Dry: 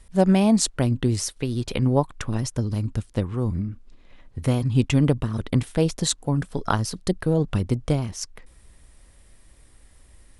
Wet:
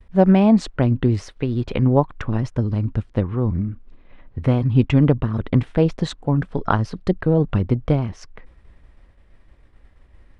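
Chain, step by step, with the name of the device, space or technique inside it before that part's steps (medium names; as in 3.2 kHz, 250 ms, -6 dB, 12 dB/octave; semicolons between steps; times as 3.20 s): hearing-loss simulation (low-pass 2.3 kHz 12 dB/octave; expander -47 dBFS); trim +4 dB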